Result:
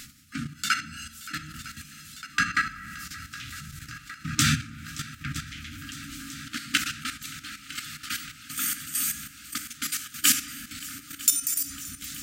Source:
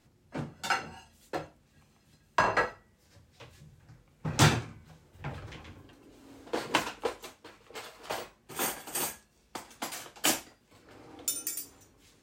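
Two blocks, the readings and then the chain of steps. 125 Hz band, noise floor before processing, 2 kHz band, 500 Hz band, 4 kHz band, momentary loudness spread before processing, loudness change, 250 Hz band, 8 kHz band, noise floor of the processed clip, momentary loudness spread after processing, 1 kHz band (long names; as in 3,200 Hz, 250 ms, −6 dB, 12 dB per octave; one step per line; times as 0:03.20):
0.0 dB, −66 dBFS, +5.5 dB, below −25 dB, +6.5 dB, 20 LU, +3.5 dB, +1.5 dB, +9.0 dB, −49 dBFS, 16 LU, −2.5 dB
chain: mains-hum notches 50/100/150 Hz
brick-wall band-stop 310–1,200 Hz
comb and all-pass reverb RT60 1.2 s, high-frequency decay 0.6×, pre-delay 0 ms, DRR 20 dB
reversed playback
upward compression, threshold −36 dBFS
reversed playback
parametric band 110 Hz −5.5 dB 0.27 octaves
on a send: feedback echo with a long and a short gap by turns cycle 955 ms, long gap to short 1.5 to 1, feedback 72%, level −18.5 dB
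on the sum: output level in coarse steps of 10 dB
high-shelf EQ 4,900 Hz +7 dB
one half of a high-frequency compander encoder only
level +8 dB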